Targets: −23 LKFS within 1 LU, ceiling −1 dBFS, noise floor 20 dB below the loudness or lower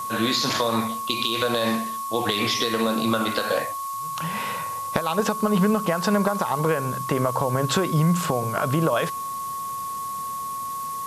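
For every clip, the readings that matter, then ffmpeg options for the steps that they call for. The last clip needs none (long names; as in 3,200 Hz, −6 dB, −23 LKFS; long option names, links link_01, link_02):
interfering tone 1,100 Hz; level of the tone −28 dBFS; background noise floor −31 dBFS; target noise floor −44 dBFS; integrated loudness −24.0 LKFS; sample peak −3.5 dBFS; target loudness −23.0 LKFS
→ -af "bandreject=frequency=1100:width=30"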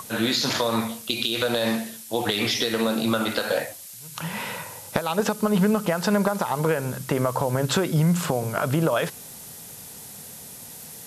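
interfering tone none found; background noise floor −42 dBFS; target noise floor −45 dBFS
→ -af "afftdn=noise_reduction=6:noise_floor=-42"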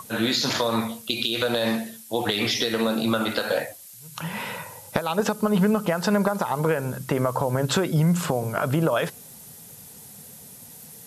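background noise floor −45 dBFS; integrated loudness −24.5 LKFS; sample peak −3.5 dBFS; target loudness −23.0 LKFS
→ -af "volume=1.5dB"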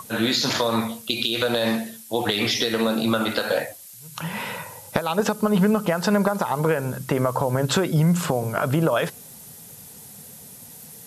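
integrated loudness −23.0 LKFS; sample peak −2.0 dBFS; background noise floor −44 dBFS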